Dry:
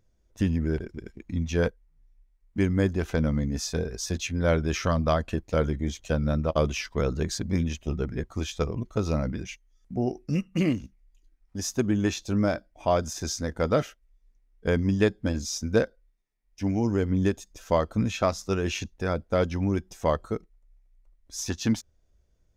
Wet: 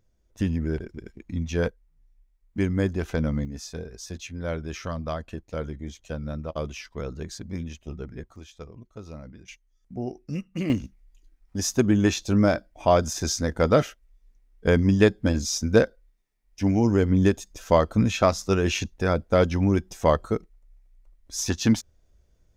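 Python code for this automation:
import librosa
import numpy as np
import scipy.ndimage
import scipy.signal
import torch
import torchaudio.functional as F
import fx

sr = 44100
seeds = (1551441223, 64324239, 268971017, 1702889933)

y = fx.gain(x, sr, db=fx.steps((0.0, -0.5), (3.45, -7.0), (8.36, -14.0), (9.48, -4.5), (10.7, 4.5)))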